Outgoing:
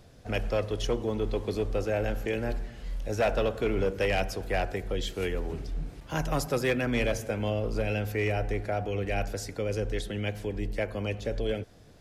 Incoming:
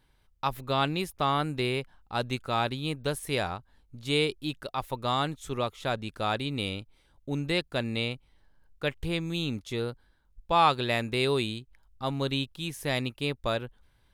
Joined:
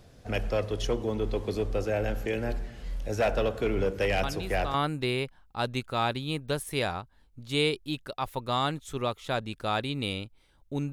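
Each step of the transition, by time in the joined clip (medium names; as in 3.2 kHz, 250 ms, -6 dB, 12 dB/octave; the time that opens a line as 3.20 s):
outgoing
4.23 s: add incoming from 0.79 s 0.51 s -8 dB
4.74 s: go over to incoming from 1.30 s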